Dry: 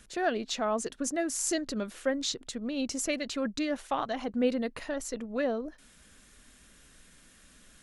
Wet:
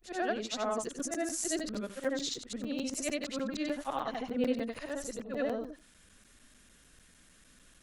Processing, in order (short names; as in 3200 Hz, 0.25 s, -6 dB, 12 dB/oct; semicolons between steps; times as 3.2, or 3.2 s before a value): short-time reversal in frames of 0.193 s; crackling interface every 0.15 s, samples 256, zero, from 0.84